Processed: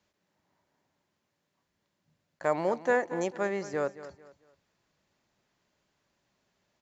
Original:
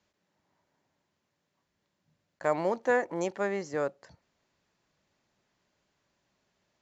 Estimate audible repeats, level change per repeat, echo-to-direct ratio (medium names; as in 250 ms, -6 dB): 3, -10.0 dB, -14.5 dB